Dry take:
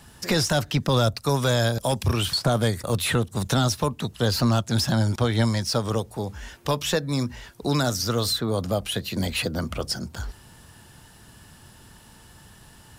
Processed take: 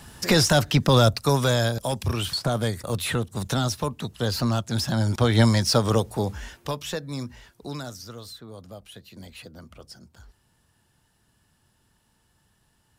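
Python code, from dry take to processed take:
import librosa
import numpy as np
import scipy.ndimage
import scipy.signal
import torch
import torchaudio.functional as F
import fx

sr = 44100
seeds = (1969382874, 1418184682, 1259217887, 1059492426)

y = fx.gain(x, sr, db=fx.line((1.12, 3.5), (1.88, -3.0), (4.9, -3.0), (5.38, 4.0), (6.29, 4.0), (6.79, -7.0), (7.4, -7.0), (8.23, -17.0)))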